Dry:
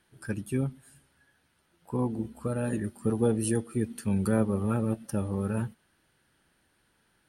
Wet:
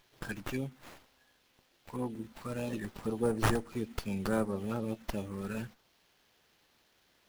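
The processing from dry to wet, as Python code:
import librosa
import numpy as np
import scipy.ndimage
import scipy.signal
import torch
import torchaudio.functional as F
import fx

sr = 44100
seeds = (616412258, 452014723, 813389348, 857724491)

y = fx.tilt_eq(x, sr, slope=3.5)
y = fx.env_phaser(y, sr, low_hz=180.0, high_hz=3500.0, full_db=-26.5)
y = fx.running_max(y, sr, window=5)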